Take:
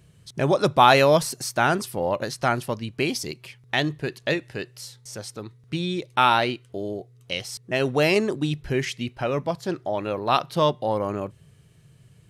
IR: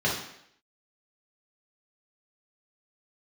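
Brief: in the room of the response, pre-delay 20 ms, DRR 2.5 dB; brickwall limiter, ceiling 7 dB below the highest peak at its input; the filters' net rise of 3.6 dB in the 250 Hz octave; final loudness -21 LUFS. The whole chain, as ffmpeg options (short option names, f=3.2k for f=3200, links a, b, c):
-filter_complex "[0:a]equalizer=f=250:t=o:g=5,alimiter=limit=-9.5dB:level=0:latency=1,asplit=2[a][b];[1:a]atrim=start_sample=2205,adelay=20[c];[b][c]afir=irnorm=-1:irlink=0,volume=-15dB[d];[a][d]amix=inputs=2:normalize=0,volume=0.5dB"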